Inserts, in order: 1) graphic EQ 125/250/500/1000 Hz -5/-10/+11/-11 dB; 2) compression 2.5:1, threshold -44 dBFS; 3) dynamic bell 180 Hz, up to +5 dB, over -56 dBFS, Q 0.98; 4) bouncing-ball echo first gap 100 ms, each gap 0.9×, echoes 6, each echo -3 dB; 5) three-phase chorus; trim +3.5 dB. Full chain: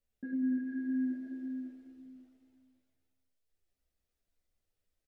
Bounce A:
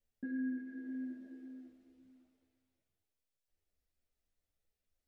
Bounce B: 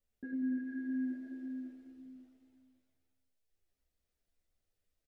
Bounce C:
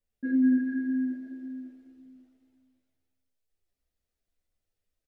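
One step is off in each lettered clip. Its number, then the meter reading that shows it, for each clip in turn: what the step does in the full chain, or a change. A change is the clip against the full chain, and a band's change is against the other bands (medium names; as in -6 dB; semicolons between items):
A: 4, crest factor change +2.0 dB; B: 3, momentary loudness spread change -3 LU; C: 2, loudness change +8.0 LU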